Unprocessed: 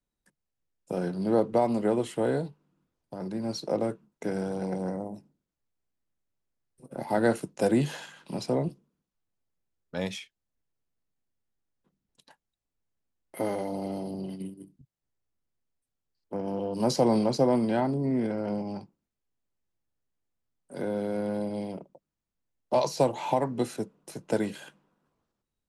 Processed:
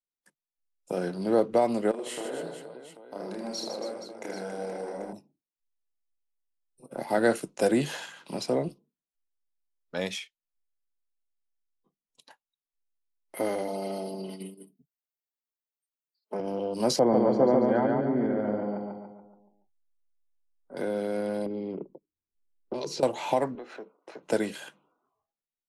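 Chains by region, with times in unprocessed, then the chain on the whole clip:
0:01.91–0:05.13: high-pass filter 230 Hz + downward compressor, threshold −36 dBFS + reverse bouncing-ball delay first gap 30 ms, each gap 1.6×, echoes 6, each echo −2 dB
0:13.68–0:16.40: high-pass filter 320 Hz 6 dB per octave + comb filter 4.7 ms, depth 95%
0:16.99–0:20.77: Savitzky-Golay smoothing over 41 samples + repeating echo 142 ms, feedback 48%, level −3 dB
0:21.46–0:23.03: low-pass that shuts in the quiet parts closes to 1,700 Hz, open at −20 dBFS + low shelf with overshoot 500 Hz +7.5 dB, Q 3 + downward compressor 16 to 1, threshold −29 dBFS
0:23.55–0:24.23: band-pass filter 370–2,000 Hz + downward compressor 4 to 1, threshold −42 dBFS + leveller curve on the samples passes 1
whole clip: parametric band 65 Hz −13.5 dB 3 octaves; noise reduction from a noise print of the clip's start 18 dB; dynamic equaliser 910 Hz, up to −5 dB, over −46 dBFS, Q 3.1; level +3.5 dB

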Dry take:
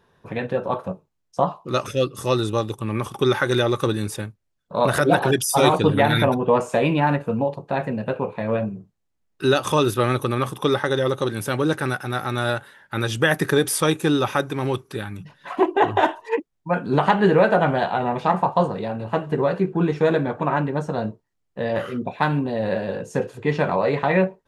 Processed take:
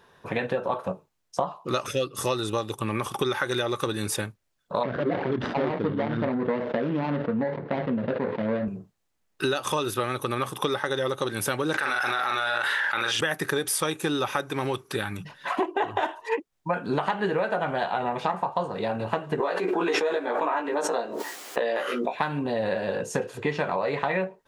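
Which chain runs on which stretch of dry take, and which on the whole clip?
0:04.83–0:08.68: running median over 41 samples + loudspeaker in its box 100–3,200 Hz, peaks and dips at 240 Hz +7 dB, 760 Hz −4 dB, 2,500 Hz −8 dB + level that may fall only so fast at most 80 dB per second
0:11.74–0:13.21: resonant band-pass 2,000 Hz, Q 0.57 + double-tracking delay 43 ms −3.5 dB + envelope flattener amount 100%
0:19.40–0:22.15: high-pass filter 300 Hz 24 dB per octave + double-tracking delay 17 ms −2 dB + background raised ahead of every attack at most 26 dB per second
whole clip: low-shelf EQ 350 Hz −9 dB; downward compressor 6 to 1, threshold −30 dBFS; level +6.5 dB

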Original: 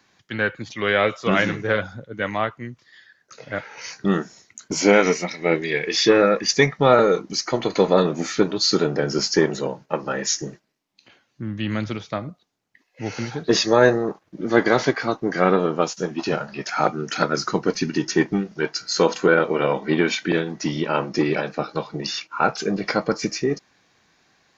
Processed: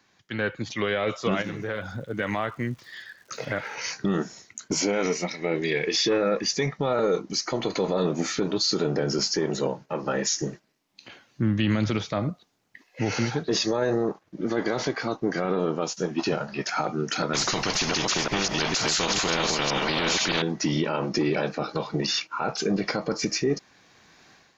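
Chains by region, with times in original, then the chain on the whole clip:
0:01.41–0:03.75: downward compressor 3 to 1, threshold −32 dBFS + surface crackle 240 per second −53 dBFS
0:17.33–0:20.42: delay that plays each chunk backwards 475 ms, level −11 dB + high-shelf EQ 6,300 Hz −10.5 dB + every bin compressed towards the loudest bin 4 to 1
whole clip: dynamic equaliser 1,700 Hz, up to −4 dB, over −34 dBFS, Q 1.3; automatic gain control; brickwall limiter −11.5 dBFS; level −3.5 dB

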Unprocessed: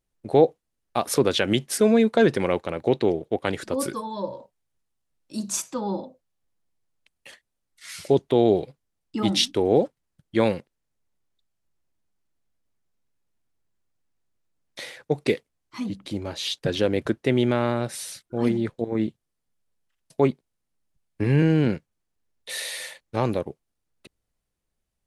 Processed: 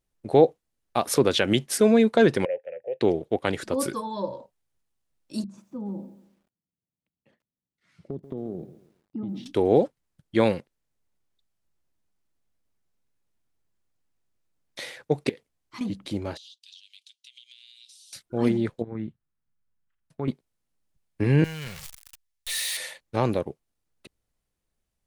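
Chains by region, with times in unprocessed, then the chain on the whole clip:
0:02.45–0:03.01: formant filter e + phaser with its sweep stopped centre 1,100 Hz, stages 6
0:05.44–0:09.46: resonant band-pass 180 Hz, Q 1.5 + downward compressor 12 to 1, threshold −28 dBFS + feedback echo at a low word length 137 ms, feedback 35%, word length 10 bits, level −14 dB
0:15.29–0:15.81: downward compressor 8 to 1, threshold −36 dBFS + highs frequency-modulated by the lows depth 0.19 ms
0:16.37–0:18.13: Butterworth high-pass 3,000 Hz 48 dB per octave + downward compressor 20 to 1, threshold −43 dBFS + high-frequency loss of the air 60 metres
0:18.82–0:20.28: drawn EQ curve 160 Hz 0 dB, 350 Hz −8 dB, 630 Hz −10 dB, 1,400 Hz −2 dB, 5,000 Hz −17 dB + downward compressor 1.5 to 1, threshold −34 dBFS
0:21.44–0:22.77: converter with a step at zero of −27.5 dBFS + guitar amp tone stack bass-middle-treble 10-0-10 + notch filter 1,500 Hz, Q 14
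whole clip: no processing

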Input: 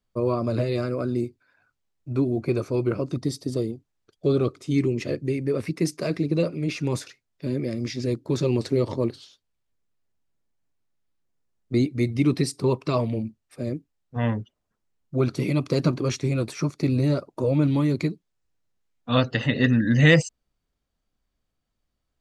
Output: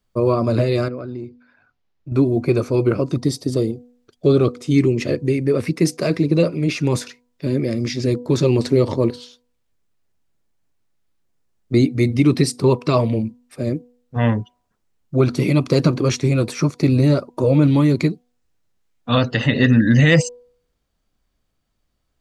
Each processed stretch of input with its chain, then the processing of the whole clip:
0:00.88–0:02.12: downward compressor 3 to 1, threshold −36 dBFS + moving average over 5 samples
whole clip: hum removal 244.2 Hz, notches 4; boost into a limiter +10.5 dB; level −3.5 dB

